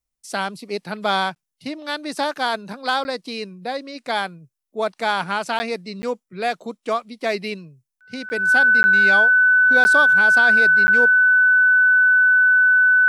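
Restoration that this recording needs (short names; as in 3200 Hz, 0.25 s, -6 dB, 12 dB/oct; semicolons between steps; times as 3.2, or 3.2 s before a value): notch 1500 Hz, Q 30; interpolate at 1.35/3.04/5.59/6.02/8.29/8.83/9.84/10.87, 10 ms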